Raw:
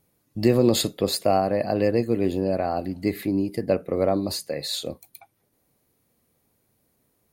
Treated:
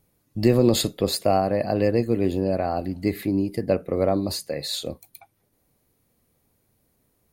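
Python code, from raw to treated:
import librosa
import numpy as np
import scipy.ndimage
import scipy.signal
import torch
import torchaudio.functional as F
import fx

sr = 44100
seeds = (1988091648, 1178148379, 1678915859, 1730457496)

y = fx.low_shelf(x, sr, hz=68.0, db=10.0)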